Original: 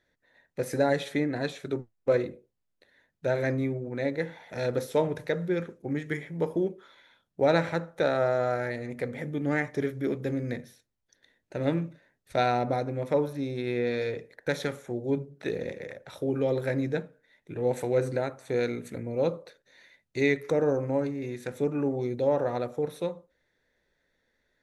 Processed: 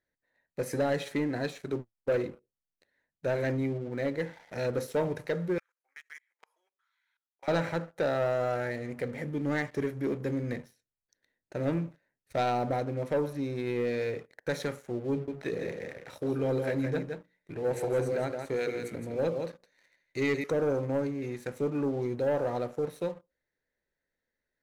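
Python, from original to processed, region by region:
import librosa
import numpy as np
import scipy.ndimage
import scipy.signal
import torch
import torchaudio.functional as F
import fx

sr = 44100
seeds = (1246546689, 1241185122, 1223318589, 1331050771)

y = fx.chain(x, sr, fx.highpass(hz=1100.0, slope=24),
    fx.level_steps(step_db=22), at=(5.58, 7.48))
y = fx.chain(y, sr, fx.hum_notches(base_hz=60, count=10),
    fx.echo_single(ms=166, db=-7.0), at=(15.11, 20.44))
y = fx.notch(y, sr, hz=3500.0, q=8.2)
y = fx.leveller(y, sr, passes=2)
y = F.gain(torch.from_numpy(y), -8.5).numpy()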